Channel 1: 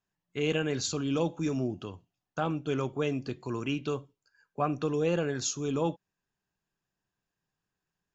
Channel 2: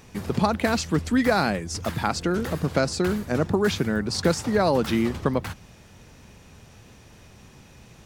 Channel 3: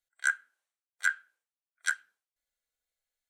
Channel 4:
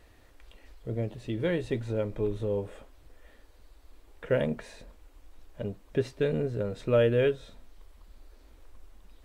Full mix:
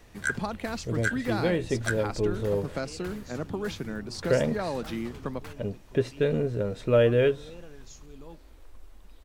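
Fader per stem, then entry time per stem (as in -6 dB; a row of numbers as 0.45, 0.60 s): -18.5, -10.5, -1.5, +2.5 dB; 2.45, 0.00, 0.00, 0.00 s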